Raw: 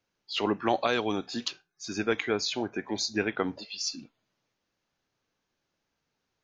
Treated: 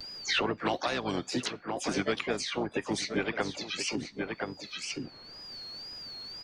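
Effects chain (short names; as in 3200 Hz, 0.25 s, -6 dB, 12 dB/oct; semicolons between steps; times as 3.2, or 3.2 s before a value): harmoniser -12 st -9 dB, +5 st -9 dB, +7 st -13 dB; whine 4600 Hz -60 dBFS; harmonic-percussive split harmonic -7 dB; wow and flutter 120 cents; on a send: echo 1.025 s -17.5 dB; on the sum: three-band squash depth 100%; gain -1.5 dB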